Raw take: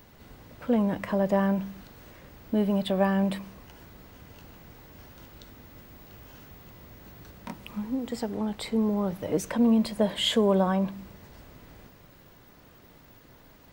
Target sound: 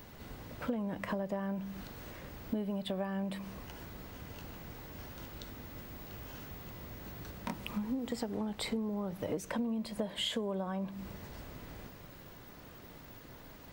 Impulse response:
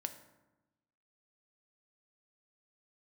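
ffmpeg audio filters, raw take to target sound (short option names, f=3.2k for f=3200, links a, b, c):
-af "acompressor=threshold=-34dB:ratio=12,volume=2dB"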